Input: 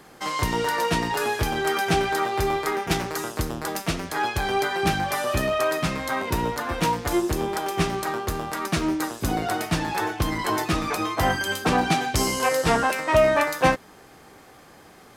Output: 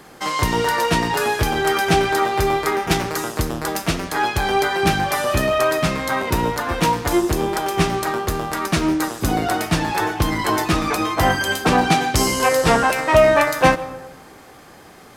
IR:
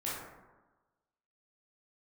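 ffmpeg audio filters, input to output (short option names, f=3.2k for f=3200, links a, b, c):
-filter_complex "[0:a]asplit=2[a][b];[1:a]atrim=start_sample=2205,adelay=109[c];[b][c]afir=irnorm=-1:irlink=0,volume=-20dB[d];[a][d]amix=inputs=2:normalize=0,volume=5dB"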